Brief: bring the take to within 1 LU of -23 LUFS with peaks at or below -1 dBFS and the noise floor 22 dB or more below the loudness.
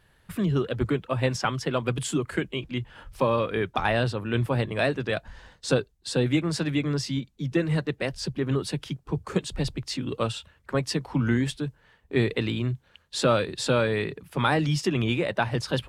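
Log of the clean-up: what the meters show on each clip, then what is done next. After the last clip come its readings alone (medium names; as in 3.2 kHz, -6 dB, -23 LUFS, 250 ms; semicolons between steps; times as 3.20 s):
loudness -27.0 LUFS; peak level -9.0 dBFS; loudness target -23.0 LUFS
-> trim +4 dB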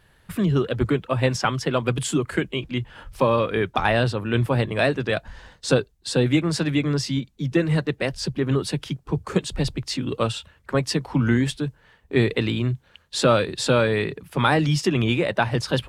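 loudness -23.5 LUFS; peak level -5.0 dBFS; noise floor -59 dBFS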